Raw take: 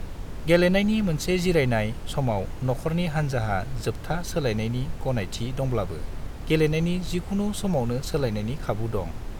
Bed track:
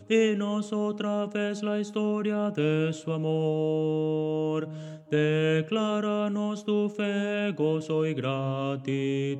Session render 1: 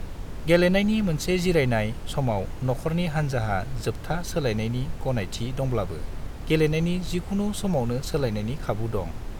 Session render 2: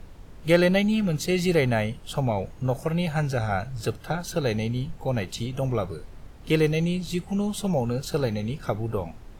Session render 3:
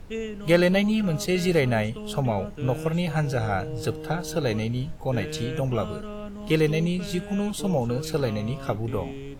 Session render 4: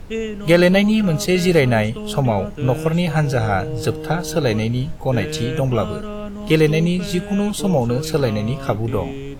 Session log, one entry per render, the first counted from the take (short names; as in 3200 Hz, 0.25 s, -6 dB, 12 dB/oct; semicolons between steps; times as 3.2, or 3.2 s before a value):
nothing audible
noise print and reduce 10 dB
add bed track -9.5 dB
gain +7 dB; limiter -3 dBFS, peak gain reduction 2 dB